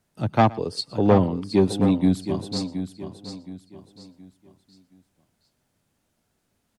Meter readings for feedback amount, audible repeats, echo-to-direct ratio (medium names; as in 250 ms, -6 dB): no regular repeats, 5, -9.0 dB